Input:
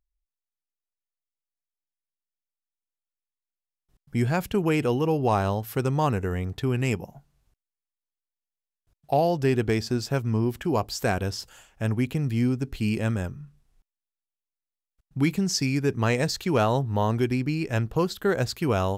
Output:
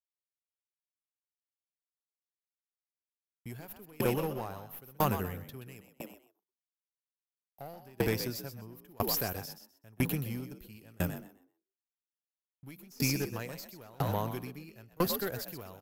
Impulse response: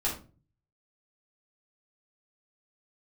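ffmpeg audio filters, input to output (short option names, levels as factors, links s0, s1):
-filter_complex "[0:a]agate=range=0.00282:threshold=0.00447:ratio=16:detection=peak,bass=f=250:g=12,treble=f=4000:g=5,acrossover=split=390[s0][s1];[s0]acompressor=threshold=0.002:ratio=1.5[s2];[s2][s1]amix=inputs=2:normalize=0,asplit=2[s3][s4];[s4]alimiter=limit=0.15:level=0:latency=1:release=49,volume=0.944[s5];[s3][s5]amix=inputs=2:normalize=0,atempo=1.2,aexciter=amount=5.4:drive=8.2:freq=11000,aeval=exprs='sgn(val(0))*max(abs(val(0))-0.00501,0)':c=same,asplit=5[s6][s7][s8][s9][s10];[s7]adelay=127,afreqshift=60,volume=0.447[s11];[s8]adelay=254,afreqshift=120,volume=0.151[s12];[s9]adelay=381,afreqshift=180,volume=0.0519[s13];[s10]adelay=508,afreqshift=240,volume=0.0176[s14];[s6][s11][s12][s13][s14]amix=inputs=5:normalize=0,aeval=exprs='clip(val(0),-1,0.106)':c=same,aeval=exprs='val(0)*pow(10,-31*if(lt(mod(1*n/s,1),2*abs(1)/1000),1-mod(1*n/s,1)/(2*abs(1)/1000),(mod(1*n/s,1)-2*abs(1)/1000)/(1-2*abs(1)/1000))/20)':c=same,volume=0.531"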